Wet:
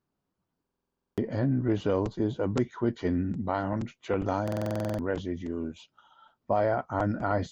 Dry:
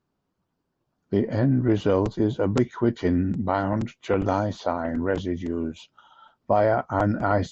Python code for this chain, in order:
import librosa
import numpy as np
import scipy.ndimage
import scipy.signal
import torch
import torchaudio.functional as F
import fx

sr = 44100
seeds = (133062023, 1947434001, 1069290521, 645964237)

y = fx.buffer_glitch(x, sr, at_s=(0.62, 4.43), block=2048, repeats=11)
y = y * librosa.db_to_amplitude(-5.5)